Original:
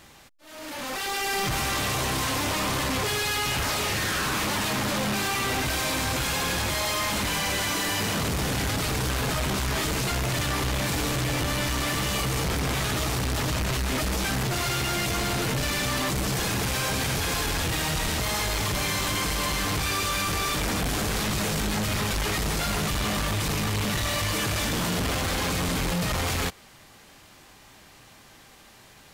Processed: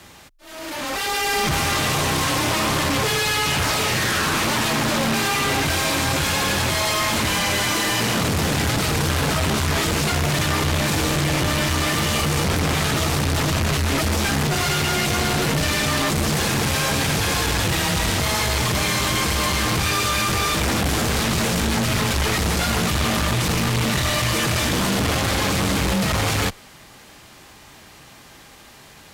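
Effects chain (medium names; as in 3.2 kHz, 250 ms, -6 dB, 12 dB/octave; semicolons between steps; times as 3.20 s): frequency shift +18 Hz; loudspeaker Doppler distortion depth 0.13 ms; trim +6 dB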